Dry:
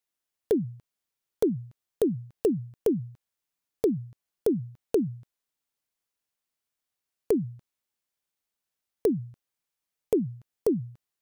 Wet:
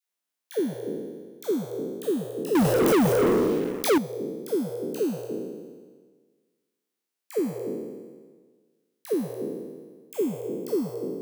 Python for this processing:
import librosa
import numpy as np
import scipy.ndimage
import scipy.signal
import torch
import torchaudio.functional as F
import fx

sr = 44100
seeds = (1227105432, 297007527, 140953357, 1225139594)

y = fx.spec_trails(x, sr, decay_s=1.55)
y = scipy.signal.sosfilt(scipy.signal.butter(4, 170.0, 'highpass', fs=sr, output='sos'), y)
y = fx.dispersion(y, sr, late='lows', ms=92.0, hz=680.0)
y = fx.leveller(y, sr, passes=5, at=(2.55, 3.98))
y = F.gain(torch.from_numpy(y), -2.5).numpy()